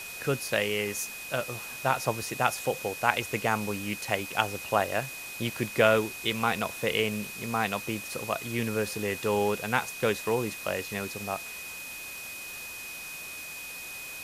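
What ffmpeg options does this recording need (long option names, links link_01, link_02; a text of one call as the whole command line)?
ffmpeg -i in.wav -af "adeclick=threshold=4,bandreject=frequency=2500:width=30,afwtdn=0.0079" out.wav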